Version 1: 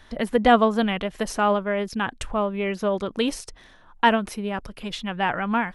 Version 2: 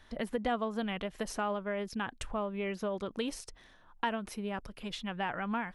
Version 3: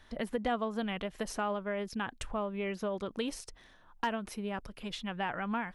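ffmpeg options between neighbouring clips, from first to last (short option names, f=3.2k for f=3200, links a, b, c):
-af "acompressor=threshold=-23dB:ratio=3,volume=-8dB"
-af "aeval=exprs='clip(val(0),-1,0.0708)':c=same"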